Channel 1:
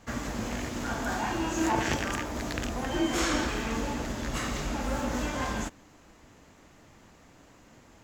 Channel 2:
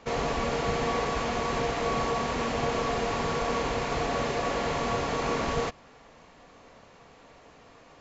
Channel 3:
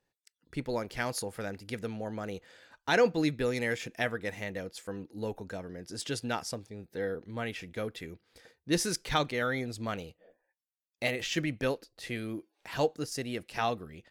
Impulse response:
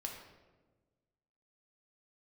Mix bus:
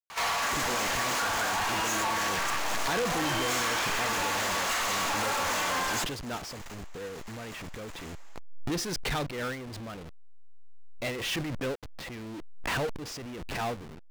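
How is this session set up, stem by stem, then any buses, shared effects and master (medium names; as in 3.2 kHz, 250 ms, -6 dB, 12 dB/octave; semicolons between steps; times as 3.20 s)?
-1.5 dB, 0.35 s, send -12.5 dB, high-pass 770 Hz 12 dB/octave; compression, threshold -38 dBFS, peak gain reduction 11.5 dB
-3.0 dB, 0.10 s, no send, high-pass 860 Hz 24 dB/octave; auto duck -9 dB, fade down 0.25 s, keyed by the third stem
-15.5 dB, 0.00 s, no send, send-on-delta sampling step -41 dBFS; Bessel low-pass 4.8 kHz; swell ahead of each attack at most 20 dB/s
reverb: on, RT60 1.3 s, pre-delay 4 ms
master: gate -44 dBFS, range -21 dB; power-law waveshaper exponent 0.35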